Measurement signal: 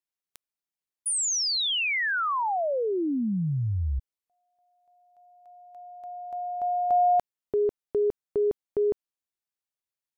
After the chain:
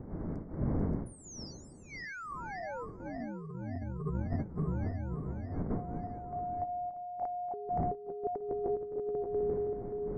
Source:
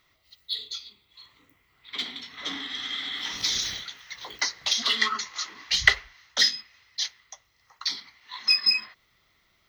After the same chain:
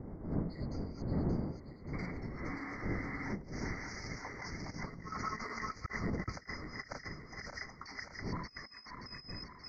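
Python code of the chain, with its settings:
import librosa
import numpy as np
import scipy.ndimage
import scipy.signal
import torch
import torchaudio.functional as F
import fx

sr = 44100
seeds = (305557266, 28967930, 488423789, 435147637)

y = fx.reverse_delay_fb(x, sr, ms=289, feedback_pct=71, wet_db=-2.0)
y = fx.dmg_wind(y, sr, seeds[0], corner_hz=270.0, level_db=-34.0)
y = fx.dynamic_eq(y, sr, hz=170.0, q=3.7, threshold_db=-42.0, ratio=4.0, max_db=5)
y = fx.over_compress(y, sr, threshold_db=-27.0, ratio=-0.5)
y = scipy.signal.sosfilt(scipy.signal.cheby1(4, 1.0, [2200.0, 4700.0], 'bandstop', fs=sr, output='sos'), y)
y = fx.spacing_loss(y, sr, db_at_10k=31)
y = fx.echo_wet_highpass(y, sr, ms=238, feedback_pct=61, hz=4600.0, wet_db=-23.0)
y = y * librosa.db_to_amplitude(-5.0)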